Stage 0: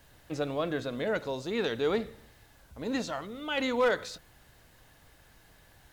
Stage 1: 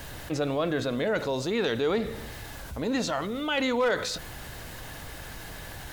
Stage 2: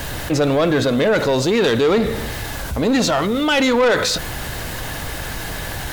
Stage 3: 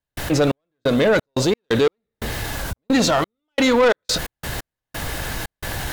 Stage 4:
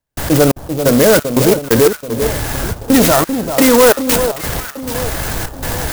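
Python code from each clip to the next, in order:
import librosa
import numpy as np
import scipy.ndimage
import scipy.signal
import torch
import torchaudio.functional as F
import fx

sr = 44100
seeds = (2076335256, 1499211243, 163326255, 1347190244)

y1 = fx.env_flatten(x, sr, amount_pct=50)
y2 = fx.leveller(y1, sr, passes=2)
y2 = y2 * librosa.db_to_amplitude(6.0)
y3 = fx.step_gate(y2, sr, bpm=88, pattern='.xx..xx.x.x..xxx', floor_db=-60.0, edge_ms=4.5)
y4 = fx.echo_alternate(y3, sr, ms=391, hz=1200.0, feedback_pct=65, wet_db=-8.0)
y4 = fx.clock_jitter(y4, sr, seeds[0], jitter_ms=0.088)
y4 = y4 * librosa.db_to_amplitude(7.0)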